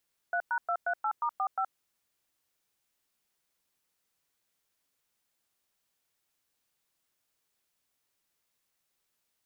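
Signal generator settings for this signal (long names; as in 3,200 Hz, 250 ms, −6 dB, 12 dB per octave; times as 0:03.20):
touch tones "3#238*45", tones 72 ms, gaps 106 ms, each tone −29.5 dBFS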